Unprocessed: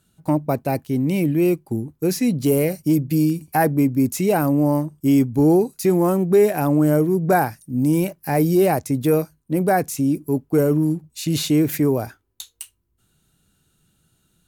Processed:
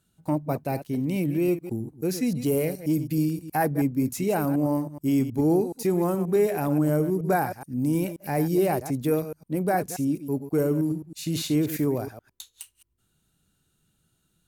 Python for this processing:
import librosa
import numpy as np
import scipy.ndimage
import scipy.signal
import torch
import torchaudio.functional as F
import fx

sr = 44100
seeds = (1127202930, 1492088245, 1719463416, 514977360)

y = fx.reverse_delay(x, sr, ms=106, wet_db=-11.0)
y = y * 10.0 ** (-6.5 / 20.0)